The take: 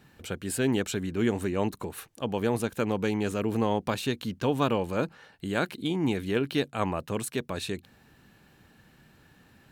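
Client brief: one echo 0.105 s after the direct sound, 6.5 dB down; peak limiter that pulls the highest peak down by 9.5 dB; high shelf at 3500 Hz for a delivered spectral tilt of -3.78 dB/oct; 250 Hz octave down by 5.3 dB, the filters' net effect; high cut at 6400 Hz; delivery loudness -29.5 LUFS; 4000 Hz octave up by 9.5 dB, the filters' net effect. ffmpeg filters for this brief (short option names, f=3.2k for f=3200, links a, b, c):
-af "lowpass=6.4k,equalizer=f=250:t=o:g=-7,highshelf=f=3.5k:g=8.5,equalizer=f=4k:t=o:g=7,alimiter=limit=-18.5dB:level=0:latency=1,aecho=1:1:105:0.473,volume=1dB"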